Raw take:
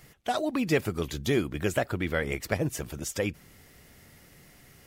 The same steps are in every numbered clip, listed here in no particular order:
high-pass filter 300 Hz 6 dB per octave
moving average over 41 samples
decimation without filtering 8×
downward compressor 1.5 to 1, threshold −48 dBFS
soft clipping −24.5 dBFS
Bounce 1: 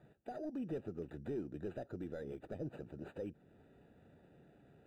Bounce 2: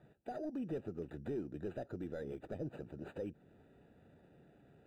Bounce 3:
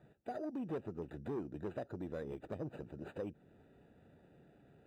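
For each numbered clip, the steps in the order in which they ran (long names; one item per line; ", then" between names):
decimation without filtering, then high-pass filter, then soft clipping, then downward compressor, then moving average
decimation without filtering, then high-pass filter, then soft clipping, then moving average, then downward compressor
decimation without filtering, then moving average, then soft clipping, then high-pass filter, then downward compressor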